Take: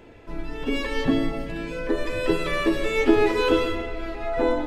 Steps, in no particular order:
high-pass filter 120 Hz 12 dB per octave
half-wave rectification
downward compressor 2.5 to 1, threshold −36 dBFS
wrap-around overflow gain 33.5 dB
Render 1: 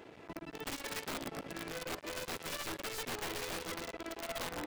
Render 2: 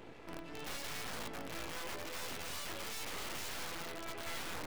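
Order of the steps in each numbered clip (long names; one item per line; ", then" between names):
downward compressor, then half-wave rectification, then high-pass filter, then wrap-around overflow
downward compressor, then high-pass filter, then wrap-around overflow, then half-wave rectification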